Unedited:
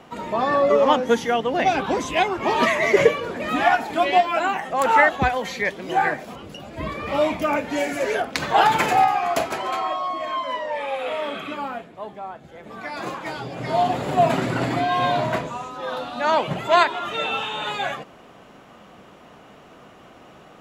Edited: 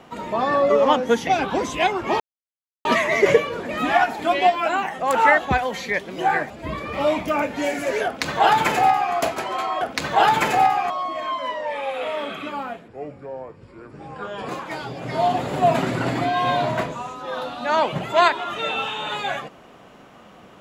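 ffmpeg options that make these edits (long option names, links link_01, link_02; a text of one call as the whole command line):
ffmpeg -i in.wav -filter_complex "[0:a]asplit=8[link_01][link_02][link_03][link_04][link_05][link_06][link_07][link_08];[link_01]atrim=end=1.272[link_09];[link_02]atrim=start=1.628:end=2.56,asetpts=PTS-STARTPTS,afade=type=out:start_time=0.928:duration=0.004:curve=hsin,apad=pad_dur=0.65[link_10];[link_03]atrim=start=2.56:end=6.212,asetpts=PTS-STARTPTS,afade=type=in:duration=0.004:curve=hsin[link_11];[link_04]atrim=start=6.638:end=9.952[link_12];[link_05]atrim=start=8.188:end=9.282[link_13];[link_06]atrim=start=9.948:end=11.934[link_14];[link_07]atrim=start=11.93:end=13.04,asetpts=PTS-STARTPTS,asetrate=30429,aresample=44100,atrim=end_sample=70943,asetpts=PTS-STARTPTS[link_15];[link_08]atrim=start=13.036[link_16];[link_10][link_11]concat=n=2:v=0:a=1[link_17];[link_09][link_17]acrossfade=duration=0.004:curve1=hsin:curve2=hsin[link_18];[link_18][link_12]acrossfade=duration=0.004:curve1=hsin:curve2=hsin[link_19];[link_19][link_13]acrossfade=duration=0.004:curve1=hsin:curve2=hsin[link_20];[link_20][link_14]acrossfade=duration=0.004:curve1=hsin:curve2=hsin[link_21];[link_21][link_15]acrossfade=duration=0.004:curve1=hsin:curve2=hsin[link_22];[link_22][link_16]acrossfade=duration=0.004:curve1=hsin:curve2=hsin" out.wav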